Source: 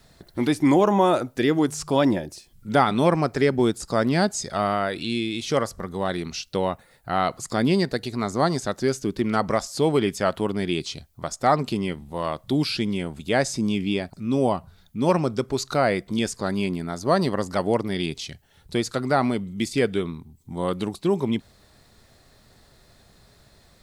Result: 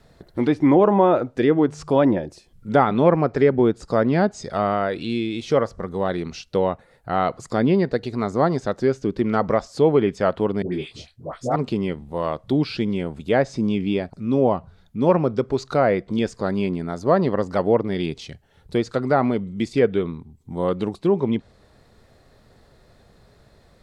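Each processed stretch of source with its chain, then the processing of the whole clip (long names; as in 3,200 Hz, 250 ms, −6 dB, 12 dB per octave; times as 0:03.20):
0:10.62–0:11.56: all-pass dispersion highs, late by 105 ms, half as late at 1,000 Hz + micro pitch shift up and down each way 50 cents
whole clip: parametric band 480 Hz +4.5 dB 0.45 octaves; treble cut that deepens with the level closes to 2,900 Hz, closed at −14.5 dBFS; high-shelf EQ 3,000 Hz −10.5 dB; level +2 dB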